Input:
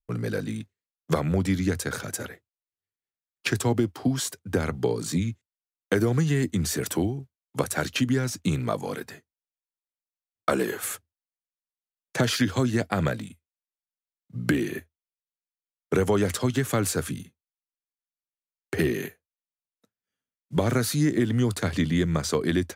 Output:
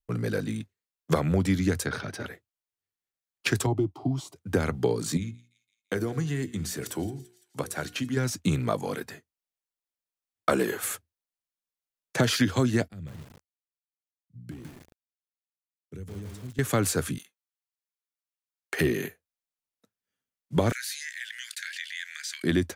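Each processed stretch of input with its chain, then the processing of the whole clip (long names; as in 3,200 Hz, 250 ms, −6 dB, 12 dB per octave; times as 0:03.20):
0:01.86–0:02.26: Savitzky-Golay smoothing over 15 samples + notch filter 510 Hz, Q 9.7
0:03.66–0:04.36: low-pass filter 1,300 Hz 6 dB per octave + phaser with its sweep stopped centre 330 Hz, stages 8
0:05.17–0:08.17: mains-hum notches 60/120/180/240/300/360/420/480 Hz + tuned comb filter 360 Hz, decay 0.51 s, mix 50% + delay with a high-pass on its return 169 ms, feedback 56%, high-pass 2,400 Hz, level −17 dB
0:12.88–0:16.59: guitar amp tone stack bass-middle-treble 10-0-1 + feedback echo at a low word length 156 ms, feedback 35%, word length 8 bits, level −3 dB
0:17.18–0:18.81: high-pass filter 850 Hz + leveller curve on the samples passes 1
0:20.72–0:22.44: Chebyshev high-pass filter 1,600 Hz, order 6 + high-shelf EQ 2,800 Hz −6.5 dB + envelope flattener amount 50%
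whole clip: no processing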